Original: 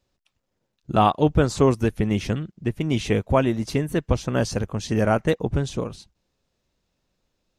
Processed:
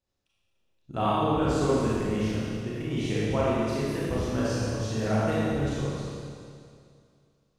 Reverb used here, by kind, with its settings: Schroeder reverb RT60 2.3 s, combs from 28 ms, DRR -8.5 dB; gain -13.5 dB

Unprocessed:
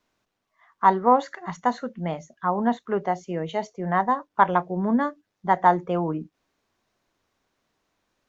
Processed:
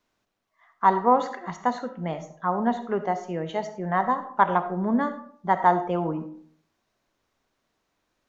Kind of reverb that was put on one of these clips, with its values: digital reverb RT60 0.58 s, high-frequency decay 0.45×, pre-delay 25 ms, DRR 10 dB; gain -1.5 dB

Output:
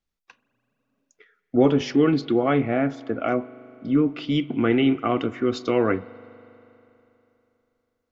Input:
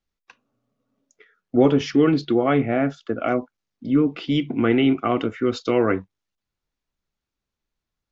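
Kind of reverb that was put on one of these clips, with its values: spring tank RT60 3.2 s, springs 40 ms, chirp 60 ms, DRR 18.5 dB; gain -1.5 dB

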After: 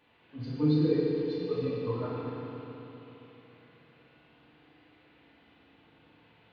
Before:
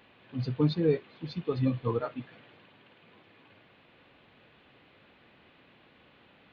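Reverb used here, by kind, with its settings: FDN reverb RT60 3.5 s, high-frequency decay 0.85×, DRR -8 dB; gain -10.5 dB

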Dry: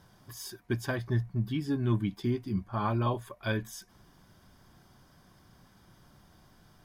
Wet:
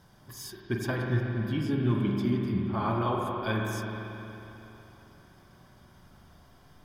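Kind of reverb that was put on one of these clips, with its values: spring tank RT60 3.3 s, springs 40/45 ms, chirp 65 ms, DRR -1 dB

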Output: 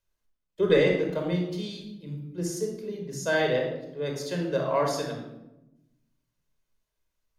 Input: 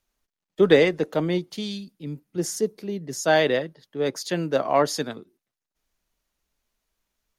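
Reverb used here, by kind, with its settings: shoebox room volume 3200 m³, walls furnished, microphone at 5.1 m; gain -9.5 dB

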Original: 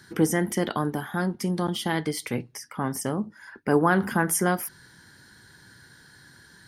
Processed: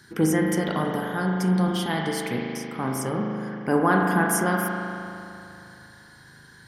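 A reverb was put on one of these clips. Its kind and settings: spring tank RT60 2.8 s, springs 38 ms, chirp 45 ms, DRR -0.5 dB; gain -1 dB

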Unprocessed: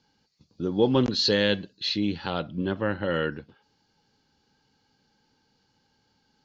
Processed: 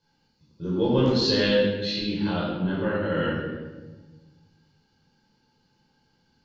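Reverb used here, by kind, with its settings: shoebox room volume 870 m³, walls mixed, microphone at 5.1 m; gain -9.5 dB

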